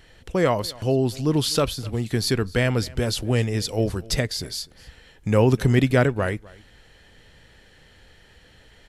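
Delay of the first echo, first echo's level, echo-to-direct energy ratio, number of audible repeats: 0.253 s, -22.5 dB, -22.5 dB, 1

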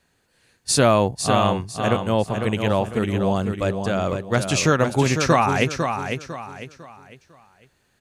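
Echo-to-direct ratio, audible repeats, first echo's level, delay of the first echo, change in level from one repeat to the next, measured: -6.0 dB, 4, -6.5 dB, 0.501 s, -9.5 dB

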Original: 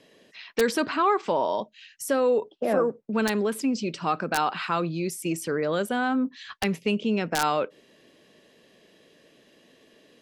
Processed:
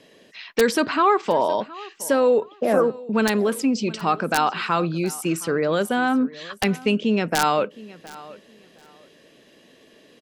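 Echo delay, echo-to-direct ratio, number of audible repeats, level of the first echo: 0.717 s, -20.0 dB, 2, -20.0 dB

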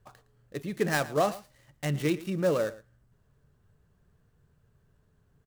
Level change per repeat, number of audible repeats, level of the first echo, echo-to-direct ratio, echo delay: no steady repeat, 1, -18.0 dB, -18.0 dB, 0.113 s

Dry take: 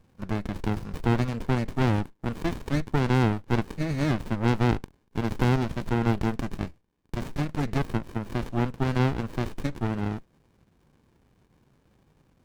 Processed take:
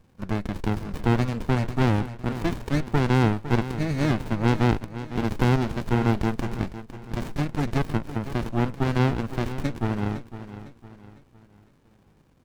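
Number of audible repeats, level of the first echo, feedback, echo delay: 3, -13.0 dB, 40%, 0.506 s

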